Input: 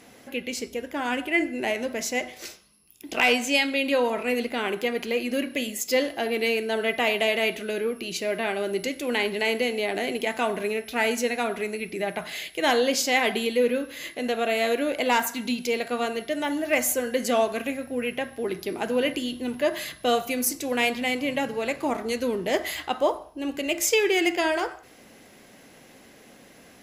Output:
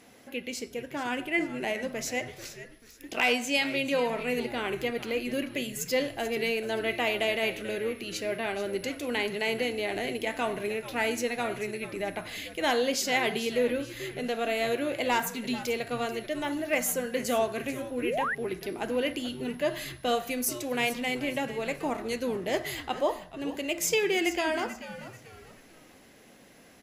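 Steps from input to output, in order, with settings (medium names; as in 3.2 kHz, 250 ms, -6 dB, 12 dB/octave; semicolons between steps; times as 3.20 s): frequency-shifting echo 437 ms, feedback 35%, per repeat -110 Hz, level -13.5 dB; painted sound rise, 18.02–18.35 s, 270–2100 Hz -25 dBFS; trim -4.5 dB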